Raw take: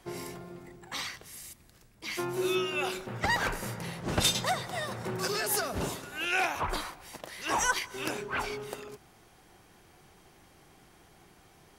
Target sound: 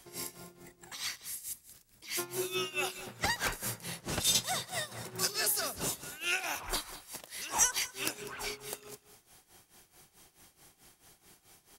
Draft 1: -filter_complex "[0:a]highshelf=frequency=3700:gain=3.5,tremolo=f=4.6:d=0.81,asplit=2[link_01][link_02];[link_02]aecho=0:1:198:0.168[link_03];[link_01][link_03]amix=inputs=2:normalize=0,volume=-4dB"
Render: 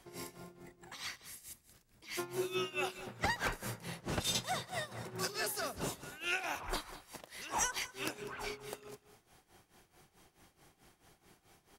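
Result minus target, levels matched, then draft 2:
8,000 Hz band −4.0 dB
-filter_complex "[0:a]highshelf=frequency=3700:gain=15,tremolo=f=4.6:d=0.81,asplit=2[link_01][link_02];[link_02]aecho=0:1:198:0.168[link_03];[link_01][link_03]amix=inputs=2:normalize=0,volume=-4dB"

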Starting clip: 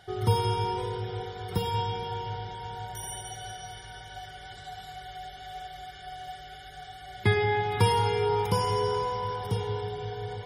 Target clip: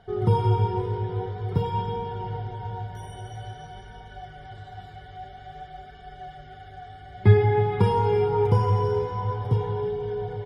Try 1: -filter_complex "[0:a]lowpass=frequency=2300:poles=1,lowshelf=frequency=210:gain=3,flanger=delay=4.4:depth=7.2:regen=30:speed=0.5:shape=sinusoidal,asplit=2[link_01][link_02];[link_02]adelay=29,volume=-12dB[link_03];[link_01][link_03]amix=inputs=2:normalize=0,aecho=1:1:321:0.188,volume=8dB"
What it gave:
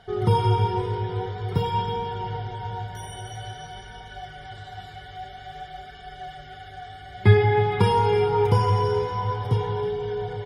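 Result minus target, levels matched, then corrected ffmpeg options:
2,000 Hz band +5.0 dB
-filter_complex "[0:a]lowpass=frequency=750:poles=1,lowshelf=frequency=210:gain=3,flanger=delay=4.4:depth=7.2:regen=30:speed=0.5:shape=sinusoidal,asplit=2[link_01][link_02];[link_02]adelay=29,volume=-12dB[link_03];[link_01][link_03]amix=inputs=2:normalize=0,aecho=1:1:321:0.188,volume=8dB"

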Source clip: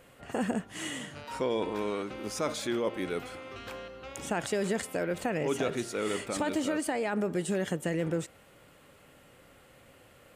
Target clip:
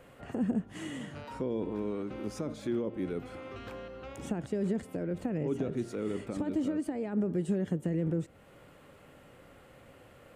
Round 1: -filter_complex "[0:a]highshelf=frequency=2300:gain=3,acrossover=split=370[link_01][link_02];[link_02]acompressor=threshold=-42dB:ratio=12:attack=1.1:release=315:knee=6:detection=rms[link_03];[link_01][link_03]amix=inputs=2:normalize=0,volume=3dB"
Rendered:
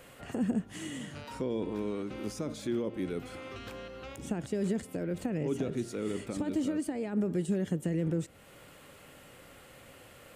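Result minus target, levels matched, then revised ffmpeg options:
4,000 Hz band +4.5 dB
-filter_complex "[0:a]highshelf=frequency=2300:gain=-8.5,acrossover=split=370[link_01][link_02];[link_02]acompressor=threshold=-42dB:ratio=12:attack=1.1:release=315:knee=6:detection=rms[link_03];[link_01][link_03]amix=inputs=2:normalize=0,volume=3dB"

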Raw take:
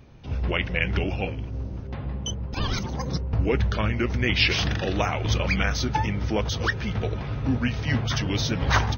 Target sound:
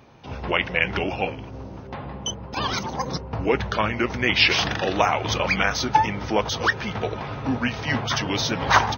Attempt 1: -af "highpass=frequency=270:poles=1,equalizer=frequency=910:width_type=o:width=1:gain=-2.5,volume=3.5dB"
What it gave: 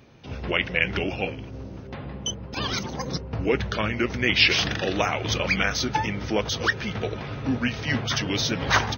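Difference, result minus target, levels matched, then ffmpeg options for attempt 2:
1,000 Hz band −5.5 dB
-af "highpass=frequency=270:poles=1,equalizer=frequency=910:width_type=o:width=1:gain=6,volume=3.5dB"

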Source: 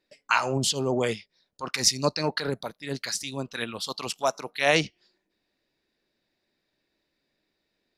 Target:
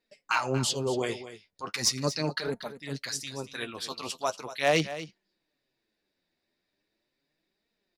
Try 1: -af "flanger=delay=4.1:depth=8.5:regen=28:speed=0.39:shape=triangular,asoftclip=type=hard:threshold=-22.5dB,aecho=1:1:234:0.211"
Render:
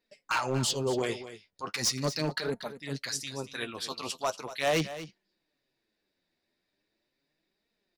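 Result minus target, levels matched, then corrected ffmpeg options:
hard clipping: distortion +11 dB
-af "flanger=delay=4.1:depth=8.5:regen=28:speed=0.39:shape=triangular,asoftclip=type=hard:threshold=-16dB,aecho=1:1:234:0.211"

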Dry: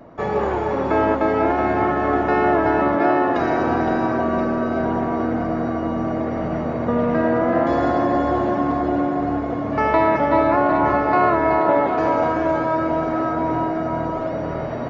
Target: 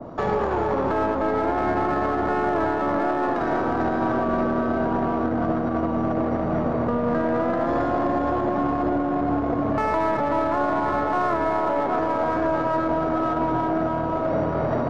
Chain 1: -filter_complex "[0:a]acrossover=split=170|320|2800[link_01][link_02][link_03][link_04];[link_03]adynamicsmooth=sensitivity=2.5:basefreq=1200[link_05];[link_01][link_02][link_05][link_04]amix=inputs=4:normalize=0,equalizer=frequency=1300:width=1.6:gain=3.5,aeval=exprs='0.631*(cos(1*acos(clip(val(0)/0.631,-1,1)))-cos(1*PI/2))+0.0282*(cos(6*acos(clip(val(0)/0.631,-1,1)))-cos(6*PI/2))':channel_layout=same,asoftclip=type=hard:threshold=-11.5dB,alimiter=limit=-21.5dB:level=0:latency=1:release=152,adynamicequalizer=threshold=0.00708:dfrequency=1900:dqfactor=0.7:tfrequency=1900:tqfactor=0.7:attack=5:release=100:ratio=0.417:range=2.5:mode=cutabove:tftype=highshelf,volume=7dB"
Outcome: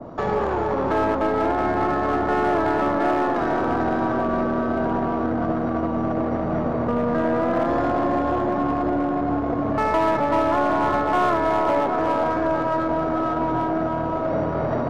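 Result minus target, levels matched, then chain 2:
hard clipping: distortion +36 dB
-filter_complex "[0:a]acrossover=split=170|320|2800[link_01][link_02][link_03][link_04];[link_03]adynamicsmooth=sensitivity=2.5:basefreq=1200[link_05];[link_01][link_02][link_05][link_04]amix=inputs=4:normalize=0,equalizer=frequency=1300:width=1.6:gain=3.5,aeval=exprs='0.631*(cos(1*acos(clip(val(0)/0.631,-1,1)))-cos(1*PI/2))+0.0282*(cos(6*acos(clip(val(0)/0.631,-1,1)))-cos(6*PI/2))':channel_layout=same,asoftclip=type=hard:threshold=-5dB,alimiter=limit=-21.5dB:level=0:latency=1:release=152,adynamicequalizer=threshold=0.00708:dfrequency=1900:dqfactor=0.7:tfrequency=1900:tqfactor=0.7:attack=5:release=100:ratio=0.417:range=2.5:mode=cutabove:tftype=highshelf,volume=7dB"

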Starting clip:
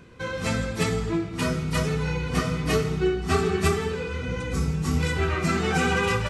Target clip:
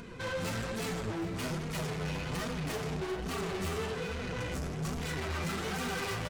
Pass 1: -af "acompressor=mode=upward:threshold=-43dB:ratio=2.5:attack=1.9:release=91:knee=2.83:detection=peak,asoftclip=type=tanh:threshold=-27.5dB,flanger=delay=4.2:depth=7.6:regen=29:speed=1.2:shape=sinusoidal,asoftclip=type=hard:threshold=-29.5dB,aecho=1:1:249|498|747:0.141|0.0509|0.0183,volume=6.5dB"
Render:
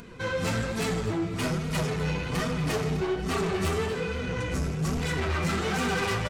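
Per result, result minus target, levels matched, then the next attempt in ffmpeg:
echo 149 ms early; soft clipping: distortion −4 dB
-af "acompressor=mode=upward:threshold=-43dB:ratio=2.5:attack=1.9:release=91:knee=2.83:detection=peak,asoftclip=type=tanh:threshold=-27.5dB,flanger=delay=4.2:depth=7.6:regen=29:speed=1.2:shape=sinusoidal,asoftclip=type=hard:threshold=-29.5dB,aecho=1:1:398|796|1194:0.141|0.0509|0.0183,volume=6.5dB"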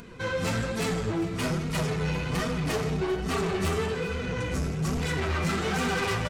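soft clipping: distortion −4 dB
-af "acompressor=mode=upward:threshold=-43dB:ratio=2.5:attack=1.9:release=91:knee=2.83:detection=peak,asoftclip=type=tanh:threshold=-37dB,flanger=delay=4.2:depth=7.6:regen=29:speed=1.2:shape=sinusoidal,asoftclip=type=hard:threshold=-29.5dB,aecho=1:1:398|796|1194:0.141|0.0509|0.0183,volume=6.5dB"

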